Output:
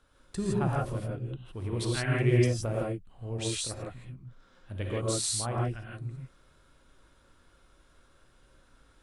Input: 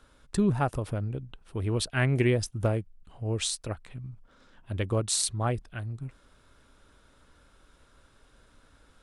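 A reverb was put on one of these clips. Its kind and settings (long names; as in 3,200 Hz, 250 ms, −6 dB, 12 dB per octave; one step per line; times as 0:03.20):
reverb whose tail is shaped and stops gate 190 ms rising, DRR −4 dB
level −7.5 dB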